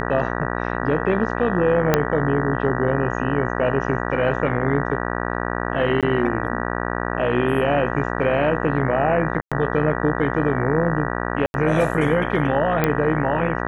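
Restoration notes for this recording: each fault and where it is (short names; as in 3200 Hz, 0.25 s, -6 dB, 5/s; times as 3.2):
buzz 60 Hz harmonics 32 -25 dBFS
1.94 pop -1 dBFS
6.01–6.03 gap 17 ms
9.41–9.52 gap 0.106 s
11.46–11.54 gap 81 ms
12.84 pop -6 dBFS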